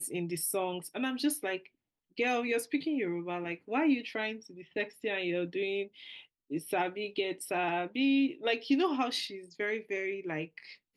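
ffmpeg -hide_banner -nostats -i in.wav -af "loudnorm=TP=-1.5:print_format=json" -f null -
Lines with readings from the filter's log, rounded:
"input_i" : "-32.7",
"input_tp" : "-17.3",
"input_lra" : "2.8",
"input_thresh" : "-43.0",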